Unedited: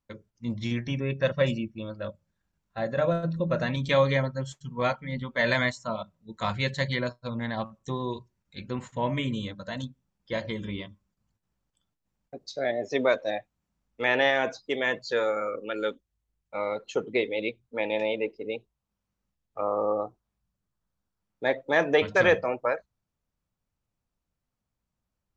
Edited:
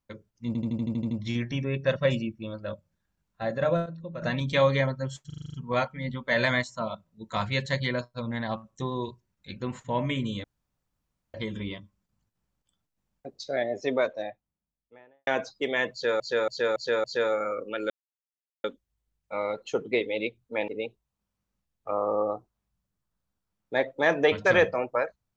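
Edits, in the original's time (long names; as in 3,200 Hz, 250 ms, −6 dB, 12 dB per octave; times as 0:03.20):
0:00.47: stutter 0.08 s, 9 plays
0:03.22–0:03.58: clip gain −11 dB
0:04.62: stutter 0.04 s, 8 plays
0:09.52–0:10.42: fill with room tone
0:12.58–0:14.35: fade out and dull
0:15.00–0:15.28: repeat, 5 plays
0:15.86: splice in silence 0.74 s
0:17.90–0:18.38: remove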